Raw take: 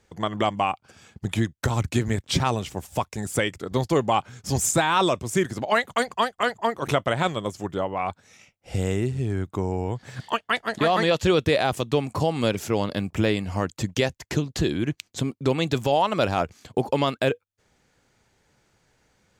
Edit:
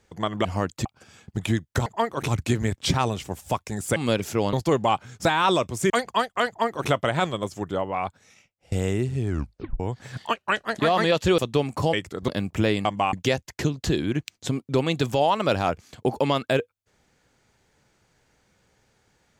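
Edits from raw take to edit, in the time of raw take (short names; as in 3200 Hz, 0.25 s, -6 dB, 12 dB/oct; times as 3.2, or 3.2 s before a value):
0.45–0.73 swap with 13.45–13.85
3.42–3.77 swap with 12.31–12.88
4.49–4.77 cut
5.42–5.93 cut
6.51–6.93 copy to 1.74
7.9–8.75 fade out equal-power, to -19.5 dB
9.32 tape stop 0.51 s
10.39–10.64 speed 86%
11.37–11.76 cut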